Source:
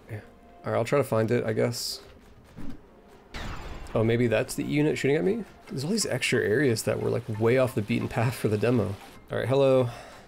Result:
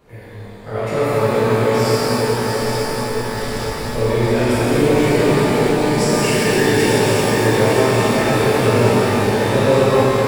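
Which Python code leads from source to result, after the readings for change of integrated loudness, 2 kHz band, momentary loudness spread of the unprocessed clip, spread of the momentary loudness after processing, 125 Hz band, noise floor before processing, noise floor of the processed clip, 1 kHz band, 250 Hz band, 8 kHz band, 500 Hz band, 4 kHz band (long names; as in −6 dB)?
+10.0 dB, +11.5 dB, 16 LU, 8 LU, +10.0 dB, −52 dBFS, −34 dBFS, +16.0 dB, +10.5 dB, +11.0 dB, +10.5 dB, +12.0 dB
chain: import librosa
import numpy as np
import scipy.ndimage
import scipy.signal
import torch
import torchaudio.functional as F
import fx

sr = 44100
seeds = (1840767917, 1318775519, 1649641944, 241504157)

y = fx.reverse_delay_fb(x, sr, ms=436, feedback_pct=80, wet_db=-5)
y = fx.rev_shimmer(y, sr, seeds[0], rt60_s=3.9, semitones=12, shimmer_db=-8, drr_db=-11.5)
y = y * librosa.db_to_amplitude(-4.5)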